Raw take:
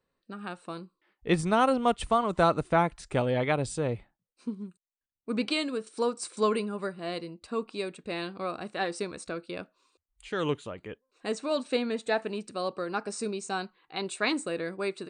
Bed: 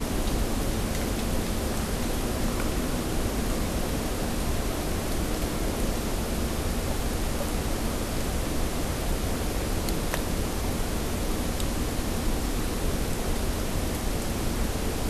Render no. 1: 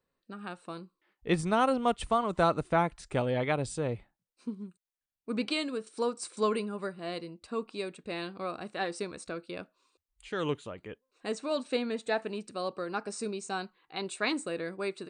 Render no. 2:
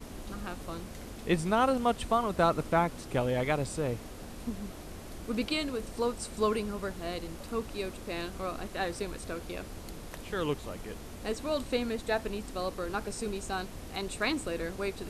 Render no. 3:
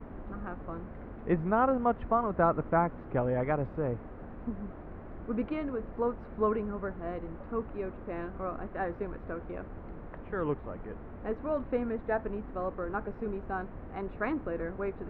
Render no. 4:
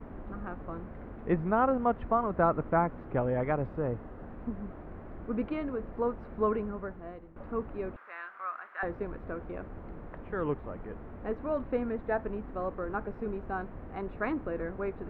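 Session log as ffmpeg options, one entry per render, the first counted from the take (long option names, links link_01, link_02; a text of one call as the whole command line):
ffmpeg -i in.wav -af "volume=-2.5dB" out.wav
ffmpeg -i in.wav -i bed.wav -filter_complex "[1:a]volume=-15.5dB[link_01];[0:a][link_01]amix=inputs=2:normalize=0" out.wav
ffmpeg -i in.wav -af "lowpass=frequency=1700:width=0.5412,lowpass=frequency=1700:width=1.3066" out.wav
ffmpeg -i in.wav -filter_complex "[0:a]asettb=1/sr,asplit=3[link_01][link_02][link_03];[link_01]atrim=end=3.734[link_04];[link_02]atrim=start=3.73:end=4.26,asetpts=PTS-STARTPTS,afade=type=in:duration=0.004:curve=qsin,afade=type=out:start_time=0.526:duration=0.004:curve=qsin,bandreject=frequency=2300:width=12[link_05];[link_03]atrim=start=4.256[link_06];[link_04][link_05]acrossfade=duration=0.004:curve1=hsin:curve2=qsin[link_07];[link_07][link_06]acrossfade=duration=0.004:curve1=qsin:curve2=hsin,asettb=1/sr,asplit=3[link_08][link_09][link_10];[link_08]atrim=end=7.964[link_11];[link_09]atrim=start=7.96:end=8.83,asetpts=PTS-STARTPTS,afade=type=in:duration=0.004:curve=qsin,afade=type=out:start_time=0.866:duration=0.004:curve=qsin,highpass=frequency=1400:width_type=q:width=2.2[link_12];[link_10]atrim=start=8.826[link_13];[link_11][link_12]acrossfade=duration=0.004:curve1=hsin:curve2=qsin[link_14];[link_14][link_13]acrossfade=duration=0.004:curve1=qsin:curve2=hsin,asplit=2[link_15][link_16];[link_15]atrim=end=7.36,asetpts=PTS-STARTPTS,afade=type=out:start_time=6.62:duration=0.74:silence=0.149624[link_17];[link_16]atrim=start=7.36,asetpts=PTS-STARTPTS,afade=type=in:duration=0.004:curve=hsin:silence=0.149624[link_18];[link_17][link_18]concat=n=2:v=0:a=1" out.wav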